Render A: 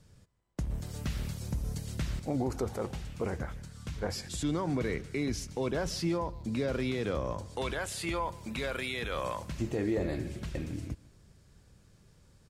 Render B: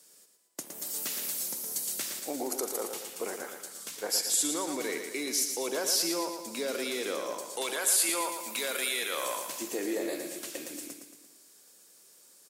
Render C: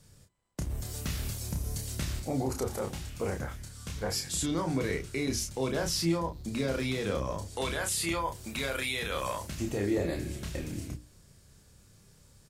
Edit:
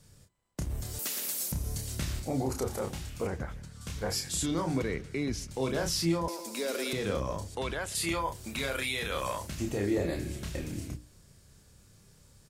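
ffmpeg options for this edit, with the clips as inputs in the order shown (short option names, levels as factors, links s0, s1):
-filter_complex "[1:a]asplit=2[s0][s1];[0:a]asplit=3[s2][s3][s4];[2:a]asplit=6[s5][s6][s7][s8][s9][s10];[s5]atrim=end=0.992[s11];[s0]atrim=start=0.988:end=1.522[s12];[s6]atrim=start=1.518:end=3.272[s13];[s2]atrim=start=3.268:end=3.812[s14];[s7]atrim=start=3.808:end=4.822[s15];[s3]atrim=start=4.818:end=5.512[s16];[s8]atrim=start=5.508:end=6.282[s17];[s1]atrim=start=6.278:end=6.932[s18];[s9]atrim=start=6.928:end=7.552[s19];[s4]atrim=start=7.548:end=7.952[s20];[s10]atrim=start=7.948[s21];[s11][s12]acrossfade=d=0.004:c1=hsin:c2=hsin[s22];[s22][s13]acrossfade=d=0.004:c1=hsin:c2=hsin[s23];[s23][s14]acrossfade=d=0.004:c1=hsin:c2=hsin[s24];[s24][s15]acrossfade=d=0.004:c1=hsin:c2=hsin[s25];[s25][s16]acrossfade=d=0.004:c1=hsin:c2=hsin[s26];[s26][s17]acrossfade=d=0.004:c1=hsin:c2=hsin[s27];[s27][s18]acrossfade=d=0.004:c1=hsin:c2=hsin[s28];[s28][s19]acrossfade=d=0.004:c1=hsin:c2=hsin[s29];[s29][s20]acrossfade=d=0.004:c1=hsin:c2=hsin[s30];[s30][s21]acrossfade=d=0.004:c1=hsin:c2=hsin"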